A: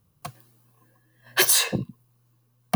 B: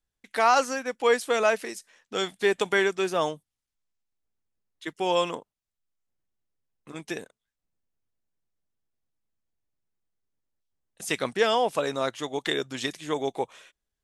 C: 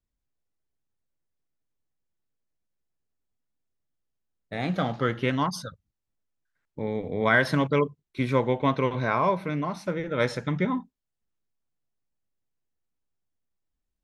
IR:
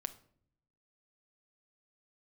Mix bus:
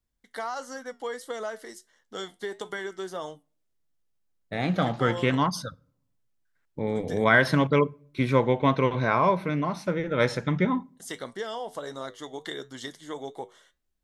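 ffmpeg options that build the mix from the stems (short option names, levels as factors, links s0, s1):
-filter_complex "[1:a]flanger=delay=8.1:depth=2.5:regen=-75:speed=1.5:shape=triangular,volume=0.75,asplit=2[s0][s1];[s1]volume=0.075[s2];[2:a]volume=1,asplit=2[s3][s4];[s4]volume=0.266[s5];[s0]asuperstop=centerf=2500:order=4:qfactor=3.8,acompressor=threshold=0.0282:ratio=6,volume=1[s6];[3:a]atrim=start_sample=2205[s7];[s2][s5]amix=inputs=2:normalize=0[s8];[s8][s7]afir=irnorm=-1:irlink=0[s9];[s3][s6][s9]amix=inputs=3:normalize=0"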